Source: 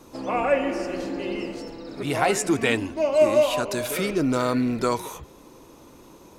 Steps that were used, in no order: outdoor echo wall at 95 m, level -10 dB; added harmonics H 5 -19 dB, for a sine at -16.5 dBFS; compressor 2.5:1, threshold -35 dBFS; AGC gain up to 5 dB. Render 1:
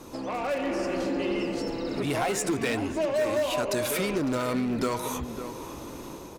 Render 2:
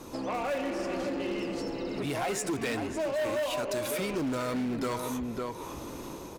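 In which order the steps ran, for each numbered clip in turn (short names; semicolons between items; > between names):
added harmonics > compressor > AGC > outdoor echo; AGC > outdoor echo > added harmonics > compressor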